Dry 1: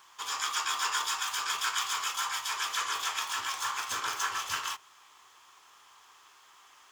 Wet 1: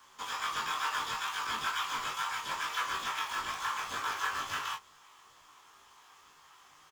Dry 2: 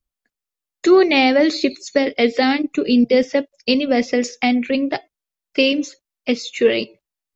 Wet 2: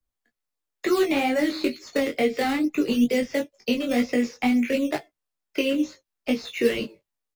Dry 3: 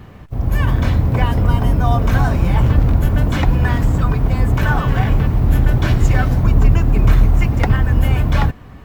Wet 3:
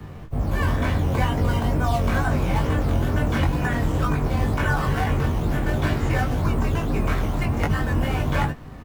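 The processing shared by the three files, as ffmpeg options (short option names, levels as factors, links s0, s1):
-filter_complex "[0:a]acrossover=split=3700[s0][s1];[s1]acompressor=threshold=0.00631:ratio=4:attack=1:release=60[s2];[s0][s2]amix=inputs=2:normalize=0,asplit=2[s3][s4];[s4]acrusher=samples=10:mix=1:aa=0.000001:lfo=1:lforange=10:lforate=2.1,volume=0.376[s5];[s3][s5]amix=inputs=2:normalize=0,acrossover=split=130|260|1400[s6][s7][s8][s9];[s6]acompressor=threshold=0.112:ratio=4[s10];[s7]acompressor=threshold=0.0447:ratio=4[s11];[s8]acompressor=threshold=0.0708:ratio=4[s12];[s9]acompressor=threshold=0.0447:ratio=4[s13];[s10][s11][s12][s13]amix=inputs=4:normalize=0,asplit=2[s14][s15];[s15]adelay=13,volume=0.355[s16];[s14][s16]amix=inputs=2:normalize=0,flanger=delay=19.5:depth=2.5:speed=2.2"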